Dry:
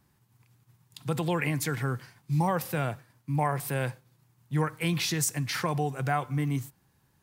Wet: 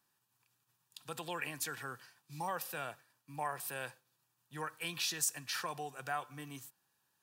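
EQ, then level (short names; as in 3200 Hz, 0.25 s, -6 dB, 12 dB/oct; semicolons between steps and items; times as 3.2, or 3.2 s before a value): HPF 1200 Hz 6 dB/oct; Butterworth band-stop 2100 Hz, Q 6.7; -4.5 dB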